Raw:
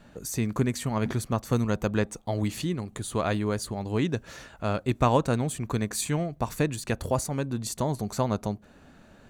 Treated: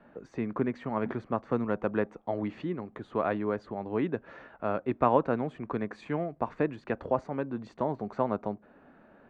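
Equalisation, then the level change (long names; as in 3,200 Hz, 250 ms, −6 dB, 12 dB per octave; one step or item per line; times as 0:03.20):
low-pass filter 4,900 Hz 12 dB per octave
high-frequency loss of the air 96 metres
three-way crossover with the lows and the highs turned down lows −15 dB, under 210 Hz, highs −20 dB, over 2,200 Hz
0.0 dB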